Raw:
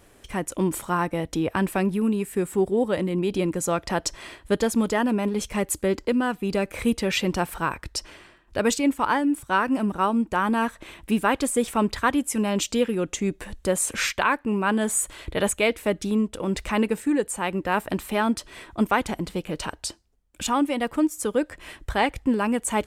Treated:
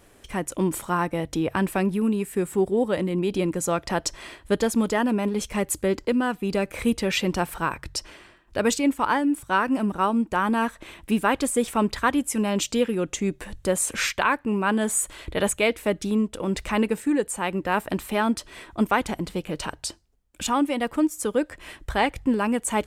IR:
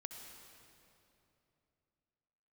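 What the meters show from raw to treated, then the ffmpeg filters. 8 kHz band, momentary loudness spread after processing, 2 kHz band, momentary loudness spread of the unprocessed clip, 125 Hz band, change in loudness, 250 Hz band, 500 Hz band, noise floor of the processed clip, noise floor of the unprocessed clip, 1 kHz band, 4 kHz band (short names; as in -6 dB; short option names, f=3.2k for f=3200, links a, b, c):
0.0 dB, 8 LU, 0.0 dB, 8 LU, 0.0 dB, 0.0 dB, 0.0 dB, 0.0 dB, -55 dBFS, -55 dBFS, 0.0 dB, 0.0 dB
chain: -af "bandreject=f=45.47:t=h:w=4,bandreject=f=90.94:t=h:w=4,bandreject=f=136.41:t=h:w=4"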